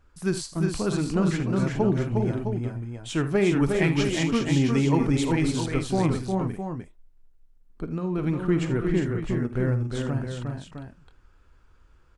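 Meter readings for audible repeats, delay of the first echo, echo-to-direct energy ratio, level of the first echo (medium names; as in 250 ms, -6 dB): 4, 50 ms, -1.0 dB, -13.5 dB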